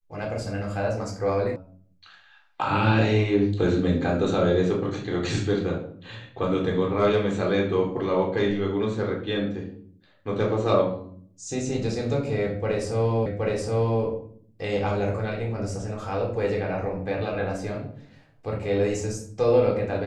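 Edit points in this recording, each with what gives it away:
0:01.56: cut off before it has died away
0:13.26: the same again, the last 0.77 s

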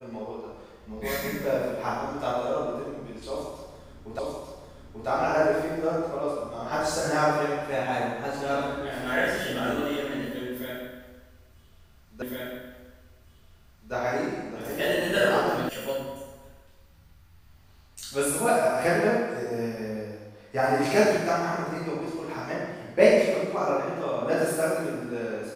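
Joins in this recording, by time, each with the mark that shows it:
0:04.19: the same again, the last 0.89 s
0:12.22: the same again, the last 1.71 s
0:15.69: cut off before it has died away

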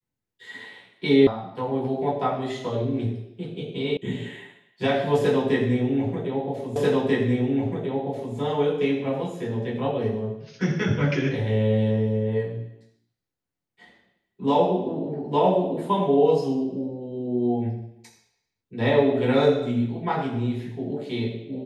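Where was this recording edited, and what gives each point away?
0:01.27: cut off before it has died away
0:03.97: cut off before it has died away
0:06.76: the same again, the last 1.59 s

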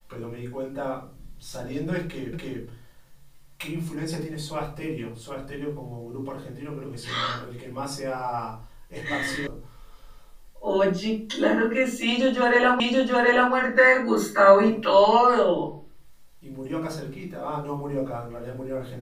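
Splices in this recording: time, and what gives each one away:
0:02.33: the same again, the last 0.29 s
0:09.47: cut off before it has died away
0:12.80: the same again, the last 0.73 s

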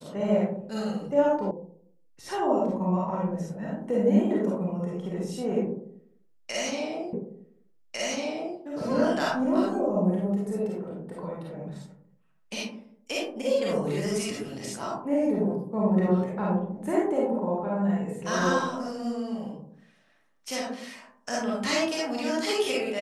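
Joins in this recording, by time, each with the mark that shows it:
0:01.51: cut off before it has died away
0:07.13: the same again, the last 1.45 s

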